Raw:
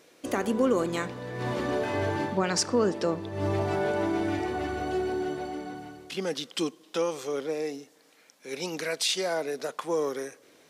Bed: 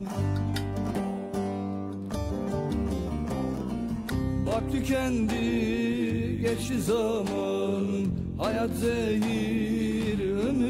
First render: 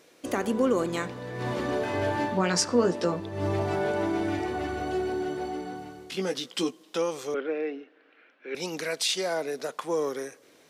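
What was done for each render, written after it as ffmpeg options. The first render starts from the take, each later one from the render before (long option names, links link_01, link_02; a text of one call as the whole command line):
ffmpeg -i in.wav -filter_complex "[0:a]asettb=1/sr,asplit=3[link_01][link_02][link_03];[link_01]atrim=end=2.004[link_04];[link_02]atrim=start=2:end=3.2,asetpts=PTS-STARTPTS,afade=type=in:duration=0.004:curve=qsin,afade=type=out:start_time=1.196:duration=0.004:curve=qsin,asplit=2[link_05][link_06];[link_06]adelay=17,volume=-4.5dB[link_07];[link_05][link_07]amix=inputs=2:normalize=0,atrim=end_sample=52920[link_08];[link_03]atrim=start=3.196[link_09];[link_04][link_08]acrossfade=duration=0.004:curve1=hsin:curve2=qsin[link_10];[link_10][link_09]acrossfade=duration=0.004:curve1=qsin:curve2=hsin,asettb=1/sr,asplit=3[link_11][link_12][link_13];[link_11]atrim=end=5.344[link_14];[link_12]atrim=start=5.34:end=6.83,asetpts=PTS-STARTPTS,afade=type=in:duration=0.004:curve=qsin,afade=type=out:start_time=1.486:duration=0.004:curve=qsin,asplit=2[link_15][link_16];[link_16]adelay=16,volume=-6.5dB[link_17];[link_15][link_17]amix=inputs=2:normalize=0,atrim=end_sample=65709[link_18];[link_13]atrim=start=6.826[link_19];[link_14][link_18]acrossfade=duration=0.004:curve1=hsin:curve2=qsin[link_20];[link_20][link_19]acrossfade=duration=0.004:curve1=qsin:curve2=hsin,asettb=1/sr,asplit=3[link_21][link_22][link_23];[link_21]atrim=end=7.344[link_24];[link_22]atrim=start=7.34:end=8.55,asetpts=PTS-STARTPTS,afade=type=in:duration=0.004:curve=qsin,afade=type=out:start_time=1.206:duration=0.004:curve=qsin,highpass=frequency=230:width=0.5412,highpass=frequency=230:width=1.3066,equalizer=frequency=350:width_type=q:width=4:gain=5,equalizer=frequency=910:width_type=q:width=4:gain=-5,equalizer=frequency=1500:width_type=q:width=4:gain=9,equalizer=frequency=2700:width_type=q:width=4:gain=5,lowpass=frequency=2900:width=0.5412,lowpass=frequency=2900:width=1.3066[link_25];[link_23]atrim=start=8.546[link_26];[link_24][link_25]acrossfade=duration=0.004:curve1=hsin:curve2=qsin[link_27];[link_27][link_26]acrossfade=duration=0.004:curve1=qsin:curve2=hsin" out.wav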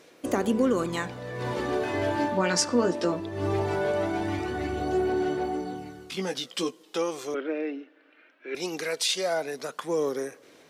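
ffmpeg -i in.wav -af "aphaser=in_gain=1:out_gain=1:delay=3.4:decay=0.36:speed=0.19:type=sinusoidal" out.wav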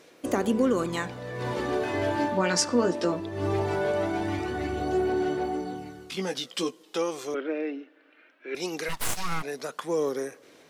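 ffmpeg -i in.wav -filter_complex "[0:a]asplit=3[link_01][link_02][link_03];[link_01]afade=type=out:start_time=8.88:duration=0.02[link_04];[link_02]aeval=exprs='abs(val(0))':channel_layout=same,afade=type=in:start_time=8.88:duration=0.02,afade=type=out:start_time=9.42:duration=0.02[link_05];[link_03]afade=type=in:start_time=9.42:duration=0.02[link_06];[link_04][link_05][link_06]amix=inputs=3:normalize=0" out.wav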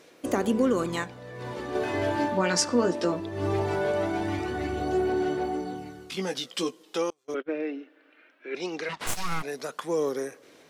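ffmpeg -i in.wav -filter_complex "[0:a]asettb=1/sr,asplit=3[link_01][link_02][link_03];[link_01]atrim=end=7.104[link_04];[link_02]atrim=start=7.1:end=7.69,asetpts=PTS-STARTPTS,afade=type=in:duration=0.004:curve=qsin,afade=type=out:start_time=0.586:duration=0.004:curve=qsin,agate=range=-36dB:threshold=-32dB:ratio=16:release=100:detection=peak[link_05];[link_03]atrim=start=7.686[link_06];[link_04][link_05]acrossfade=duration=0.004:curve1=hsin:curve2=qsin[link_07];[link_07][link_06]acrossfade=duration=0.004:curve1=qsin:curve2=hsin,asplit=3[link_08][link_09][link_10];[link_08]afade=type=out:start_time=8.48:duration=0.02[link_11];[link_09]highpass=160,lowpass=4300,afade=type=in:start_time=8.48:duration=0.02,afade=type=out:start_time=9.06:duration=0.02[link_12];[link_10]afade=type=in:start_time=9.06:duration=0.02[link_13];[link_11][link_12][link_13]amix=inputs=3:normalize=0,asplit=3[link_14][link_15][link_16];[link_14]atrim=end=1.042[link_17];[link_15]atrim=start=1.038:end=1.752,asetpts=PTS-STARTPTS,volume=-5.5dB[link_18];[link_16]atrim=start=1.748[link_19];[link_17][link_18]acrossfade=duration=0.004:curve1=hsin:curve2=hsin[link_20];[link_20][link_19]acrossfade=duration=0.004:curve1=hsin:curve2=hsin" out.wav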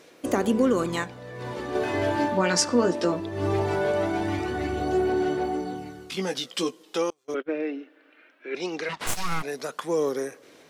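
ffmpeg -i in.wav -af "volume=2dB" out.wav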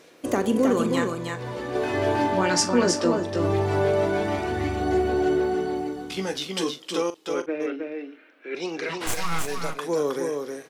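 ffmpeg -i in.wav -filter_complex "[0:a]asplit=2[link_01][link_02];[link_02]adelay=41,volume=-13dB[link_03];[link_01][link_03]amix=inputs=2:normalize=0,asplit=2[link_04][link_05];[link_05]aecho=0:1:316:0.596[link_06];[link_04][link_06]amix=inputs=2:normalize=0" out.wav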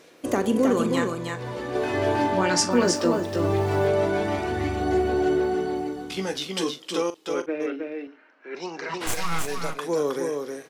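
ffmpeg -i in.wav -filter_complex "[0:a]asettb=1/sr,asplit=3[link_01][link_02][link_03];[link_01]atrim=end=2.714[link_04];[link_02]atrim=start=2.71:end=3.88,asetpts=PTS-STARTPTS,afade=type=in:duration=0.004:curve=qsin,afade=type=out:start_time=1.166:duration=0.004:curve=qsin,aeval=exprs='val(0)*gte(abs(val(0)),0.01)':channel_layout=same[link_05];[link_03]atrim=start=3.876[link_06];[link_04][link_05]acrossfade=duration=0.004:curve1=hsin:curve2=qsin[link_07];[link_07][link_06]acrossfade=duration=0.004:curve1=qsin:curve2=hsin,asettb=1/sr,asplit=3[link_08][link_09][link_10];[link_08]atrim=end=8.074[link_11];[link_09]atrim=start=8.07:end=8.94,asetpts=PTS-STARTPTS,afade=type=in:duration=0.004:curve=qsin,afade=type=out:start_time=0.866:duration=0.004:curve=qsin,highpass=150,equalizer=frequency=310:width_type=q:width=4:gain=-7,equalizer=frequency=480:width_type=q:width=4:gain=-6,equalizer=frequency=940:width_type=q:width=4:gain=7,equalizer=frequency=2400:width_type=q:width=4:gain=-7,equalizer=frequency=3500:width_type=q:width=4:gain=-9,lowpass=frequency=6900:width=0.5412,lowpass=frequency=6900:width=1.3066[link_12];[link_10]atrim=start=8.936[link_13];[link_11][link_12]acrossfade=duration=0.004:curve1=hsin:curve2=qsin[link_14];[link_14][link_13]acrossfade=duration=0.004:curve1=qsin:curve2=hsin" out.wav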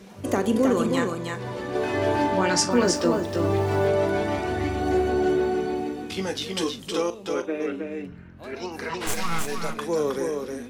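ffmpeg -i in.wav -i bed.wav -filter_complex "[1:a]volume=-13.5dB[link_01];[0:a][link_01]amix=inputs=2:normalize=0" out.wav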